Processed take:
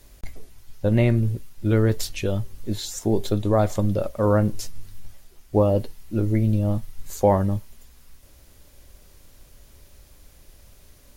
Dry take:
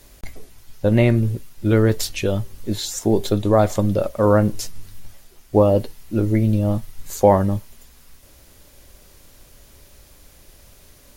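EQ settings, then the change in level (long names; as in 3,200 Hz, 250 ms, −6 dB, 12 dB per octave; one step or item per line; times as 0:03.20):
low-shelf EQ 120 Hz +5.5 dB
−5.0 dB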